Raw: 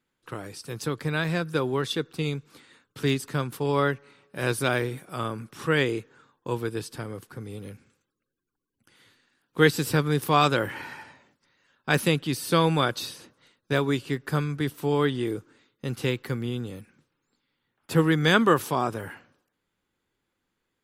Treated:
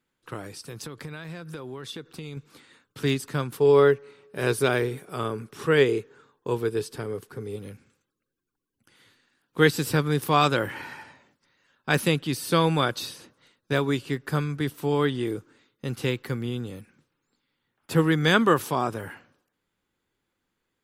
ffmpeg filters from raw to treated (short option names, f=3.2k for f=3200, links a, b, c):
-filter_complex "[0:a]asettb=1/sr,asplit=3[a][b][c];[a]atrim=end=0.574[d];[b]atrim=start=0.57:end=2.37,asetpts=PTS-STARTPTS,afade=t=in:d=0.004:c=qsin,afade=t=out:st=1.796:d=0.004:c=qsin,acompressor=threshold=-33dB:ratio=10:attack=3.2:release=140:knee=1:detection=peak[e];[c]atrim=start=2.366[f];[d][e]acrossfade=d=0.004:c1=hsin:c2=qsin[g];[g][f]acrossfade=d=0.004:c1=qsin:c2=hsin,asettb=1/sr,asplit=3[h][i][j];[h]atrim=end=3.584[k];[i]atrim=start=3.58:end=7.56,asetpts=PTS-STARTPTS,afade=t=in:d=0.004:c=qsin,afade=t=out:st=3.976:d=0.004:c=qsin,equalizer=f=420:t=o:w=0.23:g=11.5[l];[j]atrim=start=7.556[m];[k][l]acrossfade=d=0.004:c1=hsin:c2=qsin[n];[n][m]acrossfade=d=0.004:c1=qsin:c2=hsin"